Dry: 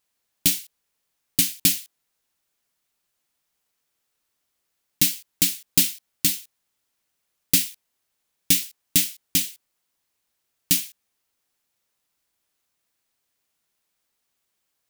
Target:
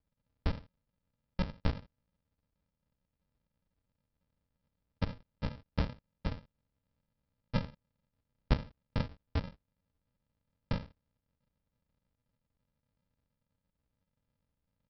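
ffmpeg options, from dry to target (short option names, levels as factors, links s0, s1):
-filter_complex "[0:a]acrossover=split=570 2600:gain=0.224 1 0.0891[s0][s1][s2];[s0][s1][s2]amix=inputs=3:normalize=0,aresample=11025,acrusher=samples=30:mix=1:aa=0.000001,aresample=44100,volume=1.88"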